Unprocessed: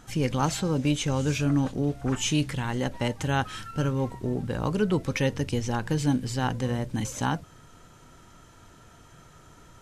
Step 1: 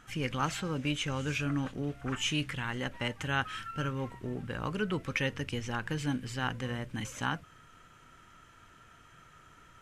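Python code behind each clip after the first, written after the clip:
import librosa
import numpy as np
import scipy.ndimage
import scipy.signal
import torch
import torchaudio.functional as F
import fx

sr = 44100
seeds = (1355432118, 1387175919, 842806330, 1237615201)

y = fx.band_shelf(x, sr, hz=1900.0, db=8.5, octaves=1.7)
y = y * 10.0 ** (-8.5 / 20.0)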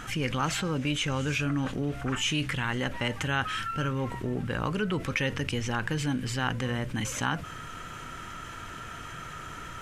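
y = fx.env_flatten(x, sr, amount_pct=50)
y = y * 10.0 ** (1.5 / 20.0)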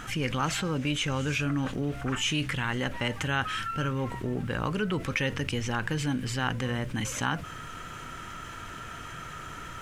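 y = fx.dmg_noise_colour(x, sr, seeds[0], colour='pink', level_db=-66.0)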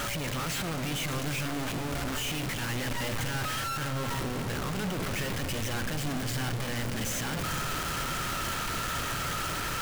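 y = np.sign(x) * np.sqrt(np.mean(np.square(x)))
y = y + 10.0 ** (-40.0 / 20.0) * np.sin(2.0 * np.pi * 570.0 * np.arange(len(y)) / sr)
y = fx.echo_opening(y, sr, ms=109, hz=200, octaves=2, feedback_pct=70, wet_db=-6)
y = y * 10.0 ** (-2.0 / 20.0)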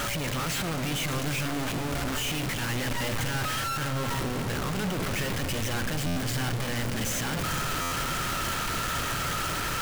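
y = fx.buffer_glitch(x, sr, at_s=(6.06, 7.81), block=512, repeats=8)
y = y * 10.0 ** (2.5 / 20.0)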